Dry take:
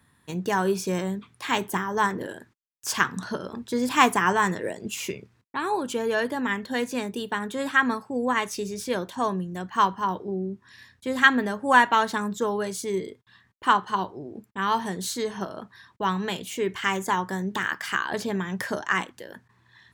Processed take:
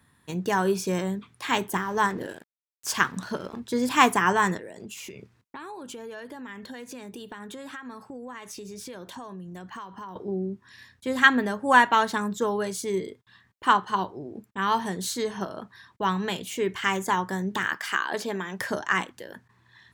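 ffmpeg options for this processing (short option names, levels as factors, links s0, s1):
-filter_complex "[0:a]asettb=1/sr,asplit=3[s0][s1][s2];[s0]atrim=end=1.734[s3];[s1]atrim=start=1.73:end=3.6,asetpts=PTS-STARTPTS,afade=t=in:d=0.004:c=qsin,afade=t=out:st=1.866:d=0.004:c=qsin,aeval=exprs='sgn(val(0))*max(abs(val(0))-0.00355,0)':c=same[s4];[s2]atrim=start=3.596[s5];[s3][s4]acrossfade=d=0.004:c1=hsin:c2=qsin[s6];[s6][s5]acrossfade=d=0.004:c1=qsin:c2=hsin,asettb=1/sr,asplit=3[s7][s8][s9];[s7]atrim=end=4.574[s10];[s8]atrim=start=4.57:end=10.16,asetpts=PTS-STARTPTS,afade=t=in:d=0.004:c=qsin,afade=t=out:st=5.586:d=0.004:c=qsin,acompressor=threshold=0.0158:ratio=10:attack=3.2:release=140:knee=1:detection=peak[s11];[s9]atrim=start=10.156[s12];[s10][s11]acrossfade=d=0.004:c1=hsin:c2=qsin[s13];[s13][s12]acrossfade=d=0.004:c1=qsin:c2=hsin,asettb=1/sr,asplit=3[s14][s15][s16];[s14]atrim=end=17.774[s17];[s15]atrim=start=17.77:end=18.61,asetpts=PTS-STARTPTS,afade=t=in:d=0.004:c=qsin,afade=t=out:st=0.836:d=0.004:c=qsin,highpass=270[s18];[s16]atrim=start=18.606[s19];[s17][s18]acrossfade=d=0.004:c1=hsin:c2=qsin[s20];[s20][s19]acrossfade=d=0.004:c1=qsin:c2=hsin"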